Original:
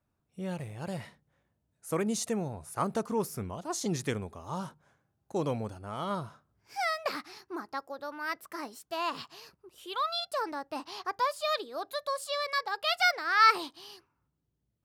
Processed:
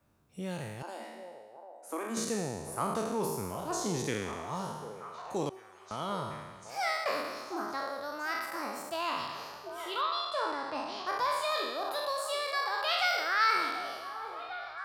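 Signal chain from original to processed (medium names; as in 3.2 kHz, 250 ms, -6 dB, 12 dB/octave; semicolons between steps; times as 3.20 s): spectral sustain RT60 1.11 s; 0.82–2.17 s: rippled Chebyshev high-pass 220 Hz, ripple 9 dB; 5.49–5.91 s: feedback comb 380 Hz, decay 0.41 s, harmonics all, mix 100%; 10.01–11.07 s: low-pass 5.6 kHz 12 dB/octave; repeats whose band climbs or falls 743 ms, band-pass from 610 Hz, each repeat 0.7 oct, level -9 dB; three bands compressed up and down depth 40%; trim -4 dB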